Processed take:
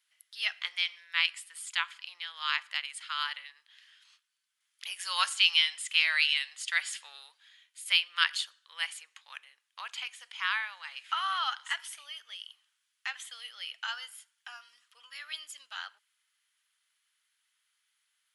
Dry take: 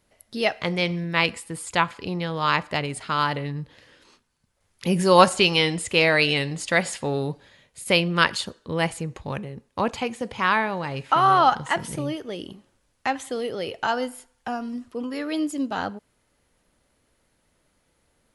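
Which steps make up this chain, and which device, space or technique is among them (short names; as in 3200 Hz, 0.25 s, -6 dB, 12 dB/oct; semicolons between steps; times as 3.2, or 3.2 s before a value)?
headphones lying on a table (HPF 1400 Hz 24 dB/oct; bell 3200 Hz +7 dB 0.32 oct); gain -6 dB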